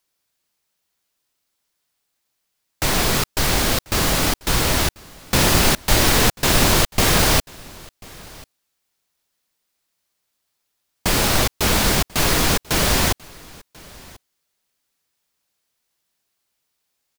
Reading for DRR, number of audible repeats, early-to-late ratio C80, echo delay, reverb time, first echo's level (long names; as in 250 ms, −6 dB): no reverb audible, 1, no reverb audible, 1,040 ms, no reverb audible, −24.0 dB